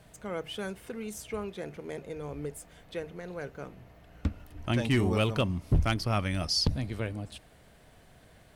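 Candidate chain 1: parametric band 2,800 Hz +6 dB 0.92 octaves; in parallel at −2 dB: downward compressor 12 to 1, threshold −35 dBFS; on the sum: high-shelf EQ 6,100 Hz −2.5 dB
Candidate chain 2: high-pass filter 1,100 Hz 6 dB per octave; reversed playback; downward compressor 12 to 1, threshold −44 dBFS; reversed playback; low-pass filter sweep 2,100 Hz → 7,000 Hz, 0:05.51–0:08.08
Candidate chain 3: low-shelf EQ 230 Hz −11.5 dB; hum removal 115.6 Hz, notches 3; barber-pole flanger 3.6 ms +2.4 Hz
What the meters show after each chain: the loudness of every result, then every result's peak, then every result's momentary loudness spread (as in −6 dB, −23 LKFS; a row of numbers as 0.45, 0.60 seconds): −29.5, −47.5, −38.5 LKFS; −12.5, −24.0, −19.5 dBFS; 13, 15, 15 LU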